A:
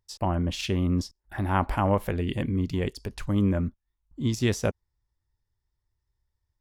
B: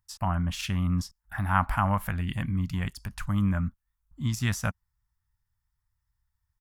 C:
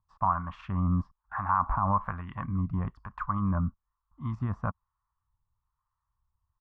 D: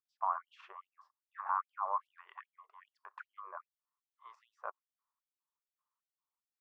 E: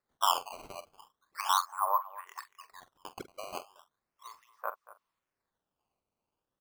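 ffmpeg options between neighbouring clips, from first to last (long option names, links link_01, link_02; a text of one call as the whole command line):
ffmpeg -i in.wav -af "firequalizer=gain_entry='entry(180,0);entry(410,-22);entry(680,-4);entry(1300,6);entry(2100,0);entry(3900,-4);entry(7300,1);entry(12000,5)':delay=0.05:min_phase=1" out.wav
ffmpeg -i in.wav -filter_complex "[0:a]alimiter=limit=-17.5dB:level=0:latency=1:release=75,acrossover=split=730[link_01][link_02];[link_01]aeval=exprs='val(0)*(1-0.7/2+0.7/2*cos(2*PI*1.1*n/s))':channel_layout=same[link_03];[link_02]aeval=exprs='val(0)*(1-0.7/2-0.7/2*cos(2*PI*1.1*n/s))':channel_layout=same[link_04];[link_03][link_04]amix=inputs=2:normalize=0,lowpass=frequency=1100:width_type=q:width=6.9" out.wav
ffmpeg -i in.wav -af "afftfilt=real='re*gte(b*sr/1024,350*pow(2900/350,0.5+0.5*sin(2*PI*2.5*pts/sr)))':imag='im*gte(b*sr/1024,350*pow(2900/350,0.5+0.5*sin(2*PI*2.5*pts/sr)))':win_size=1024:overlap=0.75,volume=-7dB" out.wav
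ffmpeg -i in.wav -filter_complex "[0:a]aecho=1:1:232:0.126,acrusher=samples=14:mix=1:aa=0.000001:lfo=1:lforange=22.4:lforate=0.37,asplit=2[link_01][link_02];[link_02]adelay=45,volume=-13dB[link_03];[link_01][link_03]amix=inputs=2:normalize=0,volume=6dB" out.wav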